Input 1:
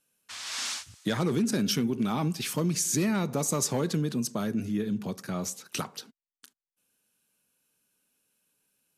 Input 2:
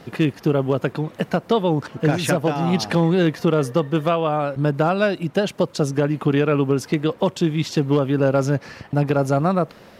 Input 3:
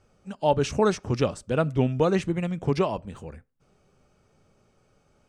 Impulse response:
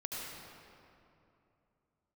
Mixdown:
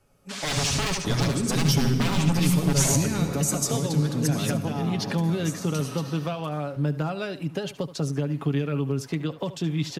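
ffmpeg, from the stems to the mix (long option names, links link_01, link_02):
-filter_complex "[0:a]volume=0dB,asplit=2[link_01][link_02];[link_02]volume=-3.5dB[link_03];[1:a]adelay=2200,volume=-6dB,asplit=2[link_04][link_05];[link_05]volume=-16.5dB[link_06];[2:a]aeval=exprs='0.0631*(abs(mod(val(0)/0.0631+3,4)-2)-1)':channel_layout=same,dynaudnorm=framelen=110:gausssize=9:maxgain=8.5dB,volume=-3.5dB,asplit=4[link_07][link_08][link_09][link_10];[link_08]volume=-13.5dB[link_11];[link_09]volume=-4.5dB[link_12];[link_10]apad=whole_len=395906[link_13];[link_01][link_13]sidechaingate=range=-11dB:threshold=-58dB:ratio=16:detection=peak[link_14];[3:a]atrim=start_sample=2205[link_15];[link_03][link_11]amix=inputs=2:normalize=0[link_16];[link_16][link_15]afir=irnorm=-1:irlink=0[link_17];[link_06][link_12]amix=inputs=2:normalize=0,aecho=0:1:73:1[link_18];[link_14][link_04][link_07][link_17][link_18]amix=inputs=5:normalize=0,aecho=1:1:7.2:0.45,acrossover=split=220|3000[link_19][link_20][link_21];[link_20]acompressor=threshold=-29dB:ratio=6[link_22];[link_19][link_22][link_21]amix=inputs=3:normalize=0"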